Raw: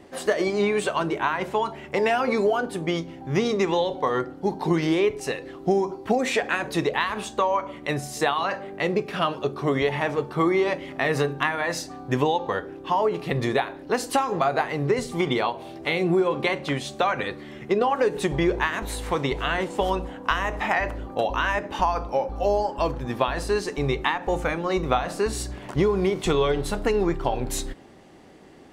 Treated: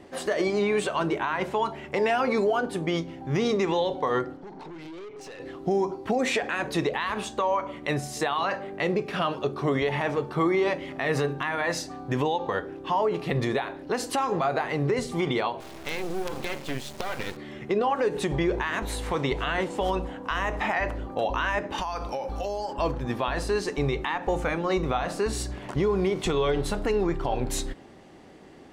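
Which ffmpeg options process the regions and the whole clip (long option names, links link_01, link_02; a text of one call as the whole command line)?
ffmpeg -i in.wav -filter_complex "[0:a]asettb=1/sr,asplit=3[link_01][link_02][link_03];[link_01]atrim=end=4.374[link_04];[link_02]atrim=start=4.37:end=5.4,asetpts=PTS-STARTPTS,afade=type=in:duration=0.004:curve=qsin,afade=type=out:start_time=1.026:duration=0.004:curve=qsin,acompressor=threshold=-33dB:ratio=4:attack=3.2:release=140:knee=1:detection=peak,highpass=150,lowpass=6300,aeval=exprs='(tanh(79.4*val(0)+0.25)-tanh(0.25))/79.4':channel_layout=same[link_05];[link_03]atrim=start=5.396[link_06];[link_04][link_05]acrossfade=duration=0.004:curve1=hsin:curve2=qsin[link_07];[link_07][link_06]acrossfade=duration=0.004:curve1=qsin:curve2=hsin,asettb=1/sr,asplit=3[link_08][link_09][link_10];[link_08]atrim=end=15.604[link_11];[link_09]atrim=start=15.6:end=17.37,asetpts=PTS-STARTPTS,afade=type=in:duration=0.004:curve=qsin,afade=type=out:start_time=1.766:duration=0.004:curve=qsin,equalizer=frequency=1200:width=1.6:gain=-5,acompressor=threshold=-22dB:ratio=5:attack=3.2:release=140:knee=1:detection=peak,acrusher=bits=4:dc=4:mix=0:aa=0.000001[link_12];[link_10]atrim=start=17.366[link_13];[link_11][link_12]acrossfade=duration=0.004:curve1=hsin:curve2=qsin[link_14];[link_14][link_13]acrossfade=duration=0.004:curve1=qsin:curve2=hsin,asettb=1/sr,asplit=3[link_15][link_16][link_17];[link_15]atrim=end=21.784[link_18];[link_16]atrim=start=21.78:end=22.73,asetpts=PTS-STARTPTS,afade=type=in:duration=0.004:curve=qsin,afade=type=out:start_time=0.946:duration=0.004:curve=qsin,highshelf=frequency=2200:gain=11,acompressor=threshold=-27dB:ratio=6:attack=3.2:release=140:knee=1:detection=peak[link_19];[link_17]atrim=start=22.726[link_20];[link_18][link_19]acrossfade=duration=0.004:curve1=hsin:curve2=qsin[link_21];[link_21][link_20]acrossfade=duration=0.004:curve1=qsin:curve2=hsin,highshelf=frequency=11000:gain=-6.5,alimiter=limit=-16dB:level=0:latency=1:release=50" out.wav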